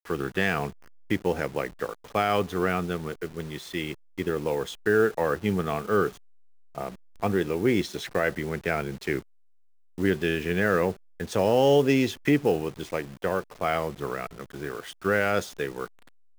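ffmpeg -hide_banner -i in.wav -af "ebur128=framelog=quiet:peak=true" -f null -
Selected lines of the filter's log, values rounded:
Integrated loudness:
  I:         -27.0 LUFS
  Threshold: -37.4 LUFS
Loudness range:
  LRA:         5.0 LU
  Threshold: -47.3 LUFS
  LRA low:   -29.5 LUFS
  LRA high:  -24.5 LUFS
True peak:
  Peak:       -9.5 dBFS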